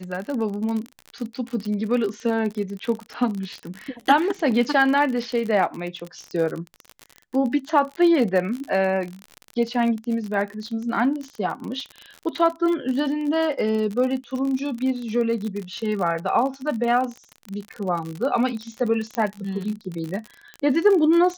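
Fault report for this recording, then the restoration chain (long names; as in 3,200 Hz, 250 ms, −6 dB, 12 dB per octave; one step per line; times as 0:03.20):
surface crackle 42 per second −27 dBFS
0:19.15: click −13 dBFS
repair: click removal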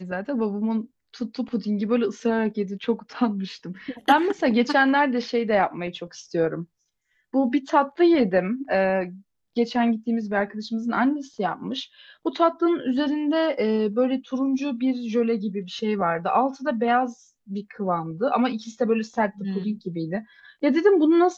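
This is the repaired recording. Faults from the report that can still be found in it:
none of them is left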